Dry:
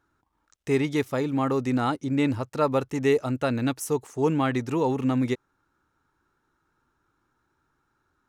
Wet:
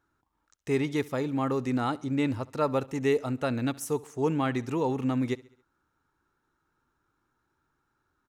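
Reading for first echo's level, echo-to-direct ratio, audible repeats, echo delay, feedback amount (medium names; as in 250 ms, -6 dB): -22.0 dB, -20.5 dB, 3, 68 ms, 51%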